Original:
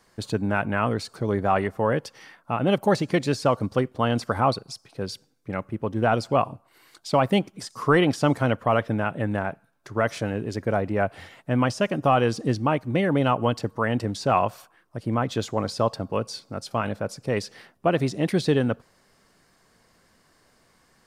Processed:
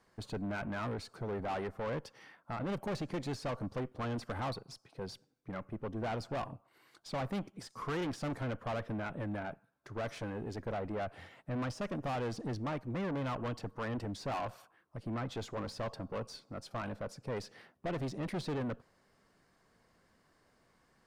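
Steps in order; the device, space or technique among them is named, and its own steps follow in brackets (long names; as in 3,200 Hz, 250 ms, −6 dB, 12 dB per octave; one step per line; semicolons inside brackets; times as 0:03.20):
tube preamp driven hard (tube saturation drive 27 dB, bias 0.35; high-shelf EQ 3,400 Hz −8 dB)
level −6 dB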